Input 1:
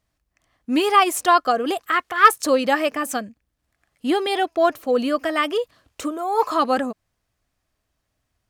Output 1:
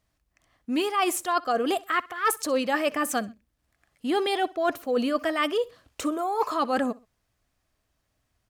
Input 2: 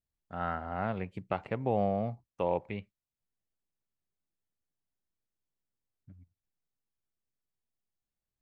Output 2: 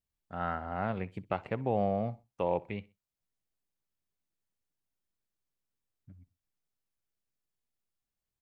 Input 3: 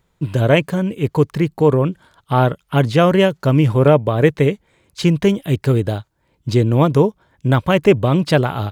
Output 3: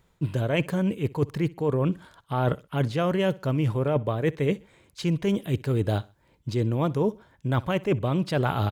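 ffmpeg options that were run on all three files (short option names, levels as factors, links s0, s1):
-af "areverse,acompressor=threshold=0.0891:ratio=12,areverse,aecho=1:1:63|126:0.0794|0.0278"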